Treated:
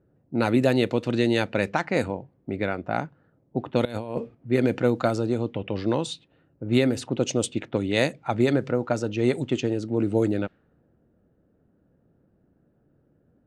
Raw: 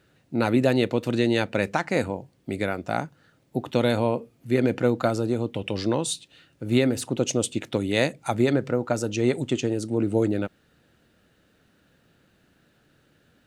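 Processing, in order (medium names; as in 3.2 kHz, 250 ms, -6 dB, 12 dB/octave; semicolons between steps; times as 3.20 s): level-controlled noise filter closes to 590 Hz, open at -17.5 dBFS; 3.85–4.35 s: compressor with a negative ratio -29 dBFS, ratio -0.5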